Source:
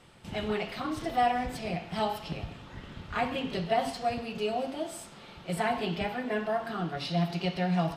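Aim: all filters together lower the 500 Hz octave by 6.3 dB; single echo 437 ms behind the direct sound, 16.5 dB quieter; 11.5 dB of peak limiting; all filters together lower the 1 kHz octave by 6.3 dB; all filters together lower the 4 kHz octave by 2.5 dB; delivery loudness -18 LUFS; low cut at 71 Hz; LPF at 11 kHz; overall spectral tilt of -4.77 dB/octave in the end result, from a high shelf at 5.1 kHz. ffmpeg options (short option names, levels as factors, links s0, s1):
-af "highpass=71,lowpass=11000,equalizer=f=500:t=o:g=-6.5,equalizer=f=1000:t=o:g=-6,equalizer=f=4000:t=o:g=-6,highshelf=f=5100:g=7,alimiter=level_in=2:limit=0.0631:level=0:latency=1,volume=0.501,aecho=1:1:437:0.15,volume=11.9"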